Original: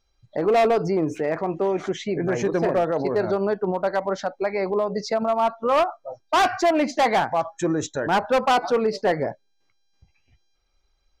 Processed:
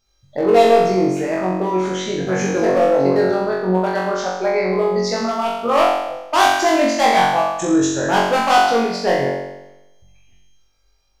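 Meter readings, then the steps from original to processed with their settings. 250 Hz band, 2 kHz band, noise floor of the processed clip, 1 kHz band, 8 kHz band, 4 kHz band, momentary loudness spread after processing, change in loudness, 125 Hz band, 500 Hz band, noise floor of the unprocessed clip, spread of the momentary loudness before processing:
+6.5 dB, +7.0 dB, -60 dBFS, +6.0 dB, +10.0 dB, +8.0 dB, 7 LU, +5.5 dB, +5.5 dB, +5.0 dB, -68 dBFS, 6 LU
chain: high shelf 5100 Hz +7 dB; flutter echo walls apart 3.7 m, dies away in 0.95 s

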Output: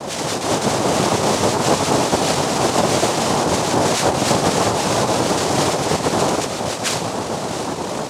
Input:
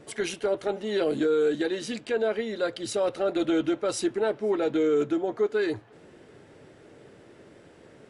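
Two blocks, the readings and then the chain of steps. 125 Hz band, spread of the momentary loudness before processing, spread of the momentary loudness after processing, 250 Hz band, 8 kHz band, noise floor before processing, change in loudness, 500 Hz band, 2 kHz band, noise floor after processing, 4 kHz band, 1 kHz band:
+21.5 dB, 6 LU, 6 LU, +8.0 dB, +20.5 dB, -53 dBFS, +9.0 dB, +6.5 dB, +12.0 dB, -26 dBFS, +17.5 dB, +20.0 dB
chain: octaver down 1 oct, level +1 dB; high shelf 4000 Hz -8.5 dB; in parallel at -9.5 dB: wavefolder -24.5 dBFS; on the sum: de-hum 141.1 Hz, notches 11; on a send: delay with a stepping band-pass 0.639 s, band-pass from 580 Hz, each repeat 1.4 oct, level -7 dB; on the sum: fuzz box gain 45 dB, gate -55 dBFS; AGC gain up to 4.5 dB; chorus voices 6, 0.48 Hz, delay 20 ms, depth 3.3 ms; noise vocoder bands 2; gain -5 dB

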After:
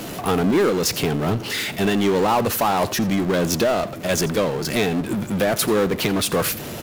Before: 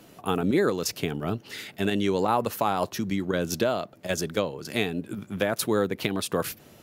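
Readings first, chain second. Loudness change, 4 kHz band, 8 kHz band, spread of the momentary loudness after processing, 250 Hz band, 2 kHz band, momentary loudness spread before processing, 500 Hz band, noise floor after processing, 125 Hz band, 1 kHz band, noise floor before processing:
+7.0 dB, +8.0 dB, +9.0 dB, 5 LU, +6.5 dB, +6.5 dB, 8 LU, +6.5 dB, -32 dBFS, +7.5 dB, +6.0 dB, -53 dBFS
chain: power-law curve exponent 0.5; echo 85 ms -18.5 dB

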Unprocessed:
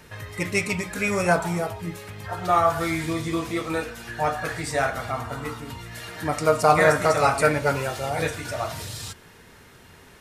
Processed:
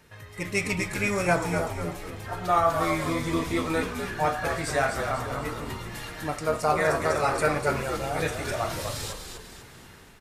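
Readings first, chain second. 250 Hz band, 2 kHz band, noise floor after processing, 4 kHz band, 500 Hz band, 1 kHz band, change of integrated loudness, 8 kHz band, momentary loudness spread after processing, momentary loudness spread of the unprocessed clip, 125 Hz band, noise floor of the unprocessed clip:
-2.0 dB, -3.0 dB, -48 dBFS, -1.5 dB, -3.5 dB, -3.0 dB, -3.0 dB, -2.0 dB, 12 LU, 16 LU, -2.5 dB, -50 dBFS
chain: AGC gain up to 8.5 dB; on a send: frequency-shifting echo 0.247 s, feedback 44%, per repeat -76 Hz, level -6.5 dB; on the sum: gain -8.5 dB

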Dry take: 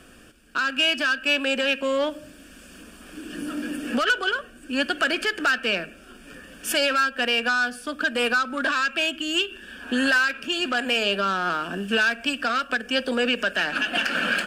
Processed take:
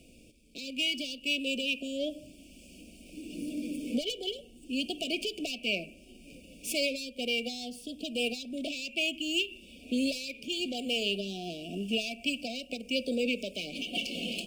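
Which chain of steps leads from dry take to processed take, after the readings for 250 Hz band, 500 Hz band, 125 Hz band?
-5.0 dB, -8.5 dB, n/a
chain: median filter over 3 samples; brick-wall FIR band-stop 750–2200 Hz; bell 1000 Hz -13 dB 0.55 oct; cascading phaser falling 0.31 Hz; gain -4.5 dB

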